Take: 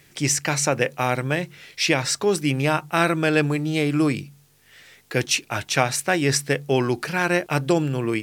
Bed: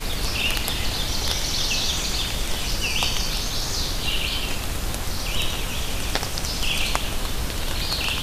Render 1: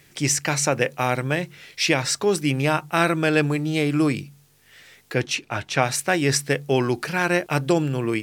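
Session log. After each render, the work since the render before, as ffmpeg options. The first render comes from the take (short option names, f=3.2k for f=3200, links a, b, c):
-filter_complex "[0:a]asettb=1/sr,asplit=3[a][b][c];[a]atrim=end=5.144[d];[b]atrim=start=5.14:end=5.83,asetpts=PTS-STARTPTS,afade=t=in:d=0.004:c=qsin,afade=t=out:st=0.686:d=0.004:c=qsin,aemphasis=mode=reproduction:type=50kf[e];[c]atrim=start=5.826[f];[d][e]acrossfade=d=0.004:c1=hsin:c2=qsin[g];[g][f]acrossfade=d=0.004:c1=qsin:c2=hsin"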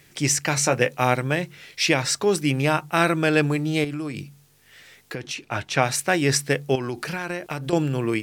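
-filter_complex "[0:a]asettb=1/sr,asplit=3[a][b][c];[a]atrim=end=0.554[d];[b]atrim=start=0.55:end=1.14,asetpts=PTS-STARTPTS,afade=t=in:d=0.004:c=qsin,afade=t=out:st=0.586:d=0.004:c=qsin,asplit=2[e][f];[f]adelay=16,volume=-8dB[g];[e][g]amix=inputs=2:normalize=0,atrim=end_sample=26019[h];[c]atrim=start=1.136[i];[d][h]acrossfade=d=0.004:c1=hsin:c2=qsin[j];[j][i]acrossfade=d=0.004:c1=qsin:c2=hsin,asettb=1/sr,asplit=3[k][l][m];[k]atrim=end=3.844[n];[l]atrim=start=3.84:end=5.44,asetpts=PTS-STARTPTS,afade=t=in:d=0.004:c=qsin,afade=t=out:st=1.596:d=0.004:c=qsin,acompressor=threshold=-26dB:ratio=10:attack=3.2:release=140:knee=1:detection=peak[o];[m]atrim=start=5.436[p];[n][o]acrossfade=d=0.004:c1=hsin:c2=qsin[q];[q][p]acrossfade=d=0.004:c1=qsin:c2=hsin,asettb=1/sr,asplit=3[r][s][t];[r]atrim=end=6.754[u];[s]atrim=start=6.75:end=7.73,asetpts=PTS-STARTPTS,afade=t=in:d=0.004:c=qsin,afade=t=out:st=0.976:d=0.004:c=qsin,acompressor=threshold=-24dB:ratio=6:attack=3.2:release=140:knee=1:detection=peak[v];[t]atrim=start=7.726[w];[u][v]acrossfade=d=0.004:c1=hsin:c2=qsin[x];[x][w]acrossfade=d=0.004:c1=qsin:c2=hsin"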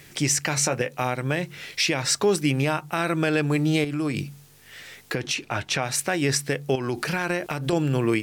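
-filter_complex "[0:a]asplit=2[a][b];[b]acompressor=threshold=-29dB:ratio=6,volume=-0.5dB[c];[a][c]amix=inputs=2:normalize=0,alimiter=limit=-11dB:level=0:latency=1:release=239"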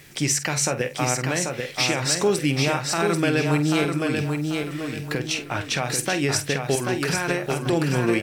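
-filter_complex "[0:a]asplit=2[a][b];[b]adelay=48,volume=-12dB[c];[a][c]amix=inputs=2:normalize=0,asplit=2[d][e];[e]aecho=0:1:788|1576|2364|3152:0.596|0.203|0.0689|0.0234[f];[d][f]amix=inputs=2:normalize=0"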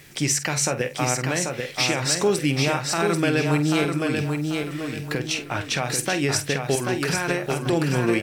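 -af anull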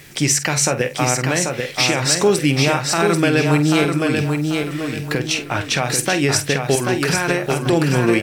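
-af "volume=5.5dB,alimiter=limit=-3dB:level=0:latency=1"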